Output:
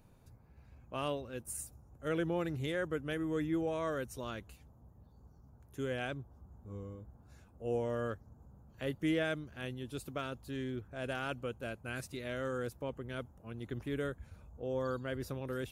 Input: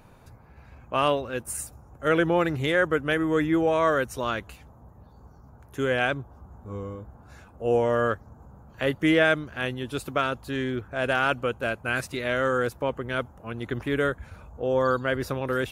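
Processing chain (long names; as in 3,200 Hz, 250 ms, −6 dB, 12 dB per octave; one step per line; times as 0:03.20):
parametric band 1,300 Hz −8.5 dB 2.9 octaves
level −8 dB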